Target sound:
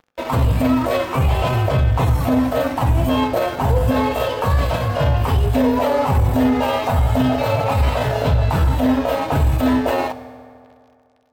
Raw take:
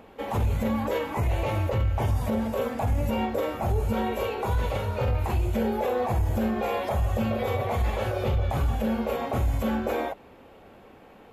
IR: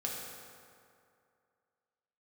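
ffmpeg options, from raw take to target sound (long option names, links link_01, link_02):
-filter_complex "[0:a]aeval=exprs='sgn(val(0))*max(abs(val(0))-0.0075,0)':channel_layout=same,asetrate=50951,aresample=44100,atempo=0.865537,asplit=2[link_01][link_02];[1:a]atrim=start_sample=2205[link_03];[link_02][link_03]afir=irnorm=-1:irlink=0,volume=-10.5dB[link_04];[link_01][link_04]amix=inputs=2:normalize=0,volume=7.5dB"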